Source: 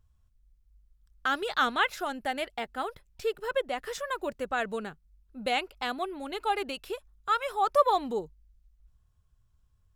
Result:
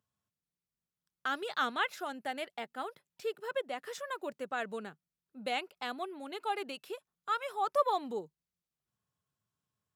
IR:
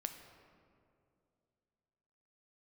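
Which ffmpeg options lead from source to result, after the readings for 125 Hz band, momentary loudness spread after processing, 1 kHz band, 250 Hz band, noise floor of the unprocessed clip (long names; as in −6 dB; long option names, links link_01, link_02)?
can't be measured, 12 LU, −6.0 dB, −6.0 dB, −67 dBFS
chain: -af "highpass=frequency=150:width=0.5412,highpass=frequency=150:width=1.3066,volume=-6dB"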